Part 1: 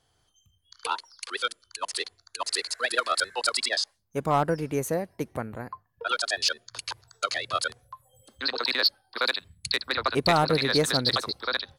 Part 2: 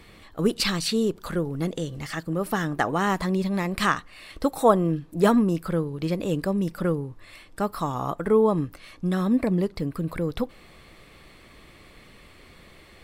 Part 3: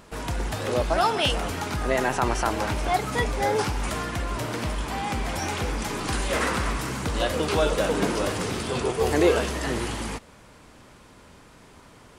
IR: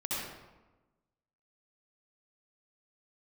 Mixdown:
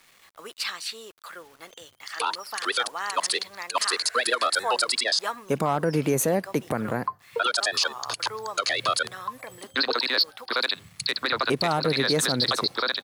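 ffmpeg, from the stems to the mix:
-filter_complex "[0:a]highpass=f=120:w=0.5412,highpass=f=120:w=1.3066,dynaudnorm=f=410:g=3:m=9dB,alimiter=limit=-9.5dB:level=0:latency=1:release=136,adelay=1350,volume=2.5dB[a];[1:a]highpass=970,equalizer=f=1.3k:w=0.39:g=4,acrusher=bits=7:mix=0:aa=0.000001,volume=-6.5dB[b];[a][b]amix=inputs=2:normalize=0,alimiter=limit=-13.5dB:level=0:latency=1:release=69"

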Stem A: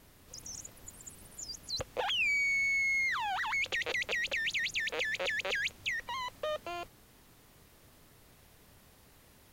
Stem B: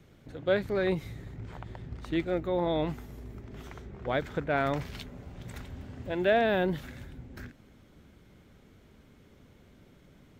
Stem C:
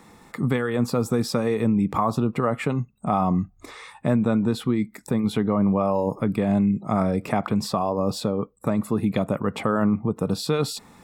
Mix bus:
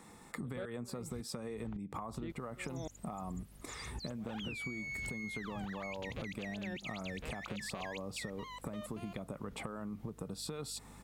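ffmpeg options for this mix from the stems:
-filter_complex "[0:a]aeval=exprs='val(0)+0.00398*(sin(2*PI*50*n/s)+sin(2*PI*2*50*n/s)/2+sin(2*PI*3*50*n/s)/3+sin(2*PI*4*50*n/s)/4+sin(2*PI*5*50*n/s)/5)':c=same,adelay=2300,volume=-9dB[a];[1:a]lowshelf=f=190:g=9,acompressor=threshold=-33dB:ratio=3,aeval=exprs='val(0)*pow(10,-40*if(lt(mod(-1.8*n/s,1),2*abs(-1.8)/1000),1-mod(-1.8*n/s,1)/(2*abs(-1.8)/1000),(mod(-1.8*n/s,1)-2*abs(-1.8)/1000)/(1-2*abs(-1.8)/1000))/20)':c=same,adelay=100,volume=-0.5dB[b];[2:a]equalizer=f=8.7k:w=1.8:g=7.5,acompressor=threshold=-28dB:ratio=6,volume=-6.5dB[c];[a][b][c]amix=inputs=3:normalize=0,acompressor=threshold=-38dB:ratio=6"

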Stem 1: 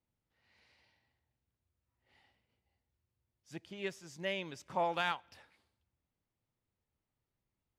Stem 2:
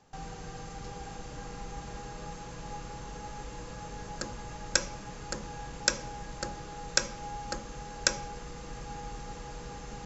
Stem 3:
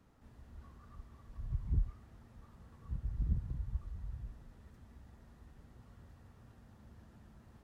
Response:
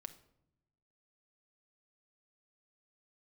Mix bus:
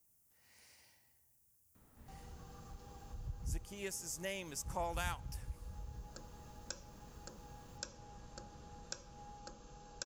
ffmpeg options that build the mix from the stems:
-filter_complex "[0:a]aexciter=amount=12.3:drive=2.7:freq=5.7k,volume=2dB[a];[1:a]equalizer=f=2k:t=o:w=0.38:g=-13,adelay=1950,volume=-13dB[b];[2:a]adelay=1750,volume=-0.5dB[c];[a][b][c]amix=inputs=3:normalize=0,acompressor=threshold=-51dB:ratio=1.5"

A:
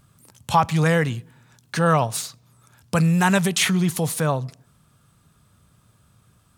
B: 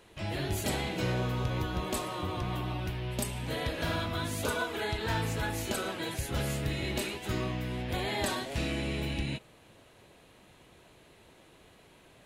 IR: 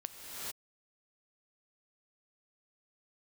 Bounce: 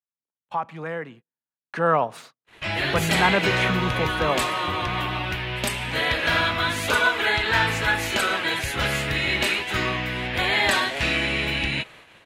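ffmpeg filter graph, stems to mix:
-filter_complex "[0:a]acrossover=split=210 2700:gain=0.0631 1 0.0794[a][b][c];[a][b][c]amix=inputs=3:normalize=0,afade=t=in:st=1.59:d=0.21:silence=0.354813[d];[1:a]equalizer=f=2k:w=0.48:g=14.5,adelay=2450,volume=2.5dB[e];[d][e]amix=inputs=2:normalize=0,agate=range=-35dB:threshold=-46dB:ratio=16:detection=peak"

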